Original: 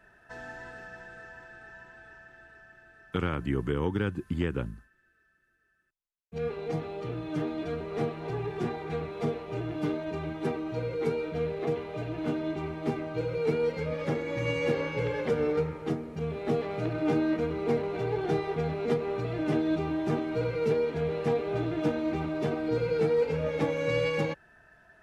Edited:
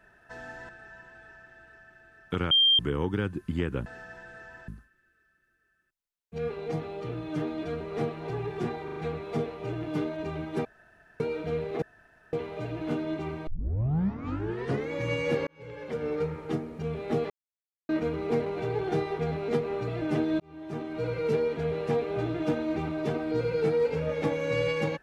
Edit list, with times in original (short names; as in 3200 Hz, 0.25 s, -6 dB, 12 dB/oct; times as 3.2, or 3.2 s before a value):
0.69–1.51 move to 4.68
3.33–3.61 bleep 3180 Hz -17.5 dBFS
8.84 stutter 0.04 s, 4 plays
10.53–11.08 room tone
11.7 insert room tone 0.51 s
12.84 tape start 1.44 s
14.84–15.78 fade in
16.67–17.26 mute
19.77–20.56 fade in